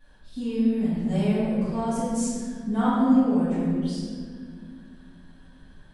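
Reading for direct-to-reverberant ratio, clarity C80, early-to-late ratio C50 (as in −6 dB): −14.5 dB, −0.5 dB, −3.5 dB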